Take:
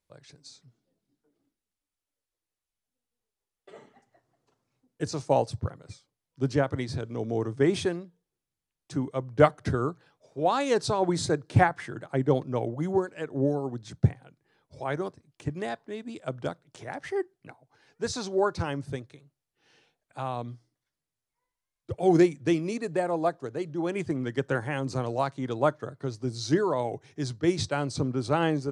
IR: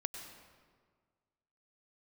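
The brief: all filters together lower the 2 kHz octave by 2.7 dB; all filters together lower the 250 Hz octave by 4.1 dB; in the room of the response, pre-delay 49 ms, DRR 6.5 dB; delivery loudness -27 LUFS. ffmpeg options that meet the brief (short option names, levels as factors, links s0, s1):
-filter_complex "[0:a]equalizer=f=250:t=o:g=-6.5,equalizer=f=2000:t=o:g=-3.5,asplit=2[s0][s1];[1:a]atrim=start_sample=2205,adelay=49[s2];[s1][s2]afir=irnorm=-1:irlink=0,volume=0.473[s3];[s0][s3]amix=inputs=2:normalize=0,volume=1.41"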